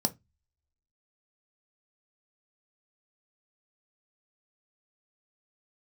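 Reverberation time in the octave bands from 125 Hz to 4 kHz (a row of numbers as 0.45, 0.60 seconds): 0.40, 0.25, 0.15, 0.20, 0.20, 0.15 seconds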